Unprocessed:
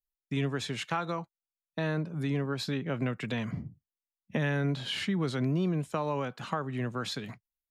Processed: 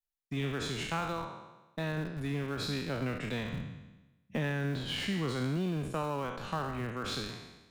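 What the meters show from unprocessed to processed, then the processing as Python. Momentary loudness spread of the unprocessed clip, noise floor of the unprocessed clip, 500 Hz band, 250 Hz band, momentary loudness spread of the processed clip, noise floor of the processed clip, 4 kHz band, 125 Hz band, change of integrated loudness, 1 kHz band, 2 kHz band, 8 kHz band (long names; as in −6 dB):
9 LU, below −85 dBFS, −3.0 dB, −3.5 dB, 9 LU, −70 dBFS, −0.5 dB, −3.0 dB, −2.5 dB, −1.5 dB, −1.5 dB, 0.0 dB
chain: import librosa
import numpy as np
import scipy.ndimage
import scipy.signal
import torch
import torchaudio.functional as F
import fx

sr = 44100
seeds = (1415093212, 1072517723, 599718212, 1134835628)

p1 = fx.spec_trails(x, sr, decay_s=1.07)
p2 = fx.schmitt(p1, sr, flips_db=-27.0)
p3 = p1 + F.gain(torch.from_numpy(p2), -10.0).numpy()
y = F.gain(torch.from_numpy(p3), -5.5).numpy()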